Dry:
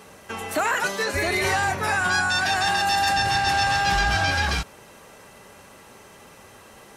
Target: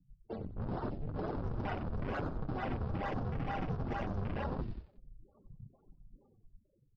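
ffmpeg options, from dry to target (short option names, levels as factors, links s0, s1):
-filter_complex "[0:a]aresample=11025,acrusher=samples=21:mix=1:aa=0.000001:lfo=1:lforange=33.6:lforate=2.2,aresample=44100,dynaudnorm=f=190:g=9:m=1.5,aeval=exprs='0.224*(abs(mod(val(0)/0.224+3,4)-2)-1)':c=same,afftfilt=real='re*gte(hypot(re,im),0.02)':imag='im*gte(hypot(re,im),0.02)':win_size=1024:overlap=0.75,flanger=delay=6.4:depth=3.5:regen=-38:speed=0.83:shape=sinusoidal,asplit=5[s0][s1][s2][s3][s4];[s1]adelay=92,afreqshift=-53,volume=0.316[s5];[s2]adelay=184,afreqshift=-106,volume=0.133[s6];[s3]adelay=276,afreqshift=-159,volume=0.0556[s7];[s4]adelay=368,afreqshift=-212,volume=0.0234[s8];[s0][s5][s6][s7][s8]amix=inputs=5:normalize=0,afwtdn=0.0282,areverse,acompressor=threshold=0.0126:ratio=5,areverse,volume=1.26"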